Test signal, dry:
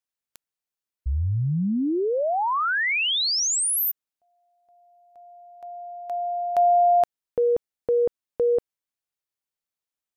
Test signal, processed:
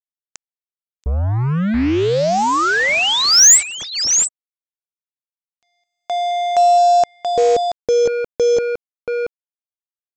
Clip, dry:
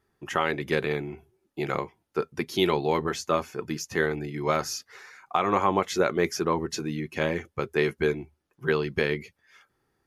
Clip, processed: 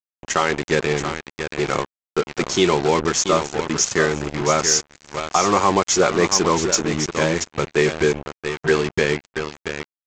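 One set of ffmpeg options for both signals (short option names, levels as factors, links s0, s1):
-af "aecho=1:1:680:0.355,aexciter=amount=4.1:drive=7.1:freq=5600,aresample=16000,acrusher=bits=4:mix=0:aa=0.5,aresample=44100,acontrast=77"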